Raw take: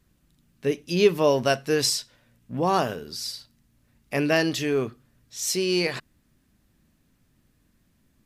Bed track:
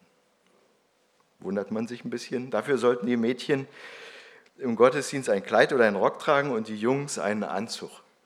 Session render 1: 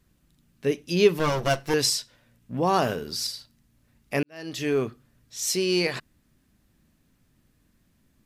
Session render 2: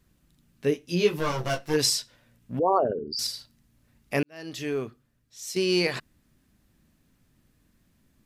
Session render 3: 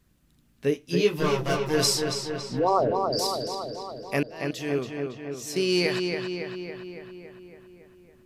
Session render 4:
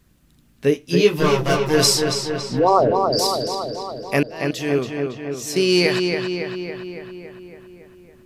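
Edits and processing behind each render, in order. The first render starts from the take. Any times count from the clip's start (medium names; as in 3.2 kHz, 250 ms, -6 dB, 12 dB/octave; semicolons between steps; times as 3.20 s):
1.19–1.74 s: comb filter that takes the minimum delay 5.9 ms; 2.82–3.27 s: waveshaping leveller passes 1; 4.23–4.68 s: fade in quadratic
0.70–1.78 s: detune thickener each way 32 cents -> 13 cents; 2.59–3.19 s: resonances exaggerated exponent 3; 4.20–5.56 s: fade out quadratic, to -10 dB
filtered feedback delay 279 ms, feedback 66%, low-pass 4.3 kHz, level -4.5 dB
trim +7 dB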